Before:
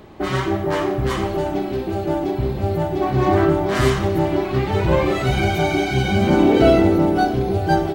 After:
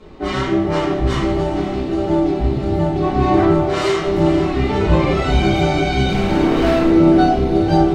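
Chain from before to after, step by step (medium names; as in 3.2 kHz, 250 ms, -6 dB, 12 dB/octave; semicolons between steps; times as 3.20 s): Chebyshev low-pass 6.6 kHz, order 2; band-stop 1.6 kHz, Q 22; 3.57–4.07 s: brick-wall FIR high-pass 310 Hz; 6.08–6.90 s: hard clipper -18 dBFS, distortion -10 dB; echo that smears into a reverb 481 ms, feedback 49%, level -11.5 dB; reverberation RT60 0.45 s, pre-delay 4 ms, DRR -8 dB; trim -6 dB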